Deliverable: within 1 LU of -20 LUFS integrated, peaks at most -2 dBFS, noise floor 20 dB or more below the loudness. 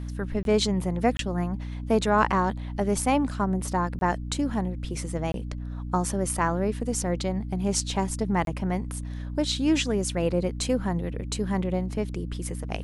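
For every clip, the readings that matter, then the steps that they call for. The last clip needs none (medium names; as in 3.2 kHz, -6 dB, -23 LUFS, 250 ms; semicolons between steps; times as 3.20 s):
dropouts 5; longest dropout 22 ms; hum 60 Hz; highest harmonic 300 Hz; hum level -31 dBFS; loudness -27.0 LUFS; peak level -8.0 dBFS; loudness target -20.0 LUFS
-> interpolate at 0.43/1.17/3.99/5.32/8.45 s, 22 ms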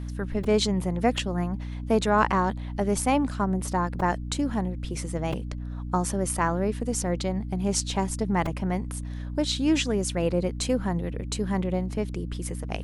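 dropouts 0; hum 60 Hz; highest harmonic 300 Hz; hum level -31 dBFS
-> hum notches 60/120/180/240/300 Hz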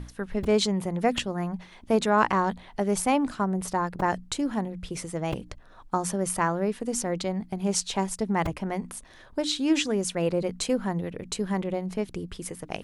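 hum not found; loudness -28.0 LUFS; peak level -8.0 dBFS; loudness target -20.0 LUFS
-> trim +8 dB; peak limiter -2 dBFS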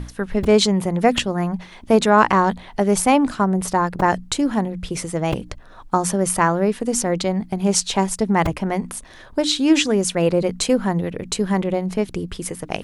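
loudness -20.0 LUFS; peak level -2.0 dBFS; noise floor -43 dBFS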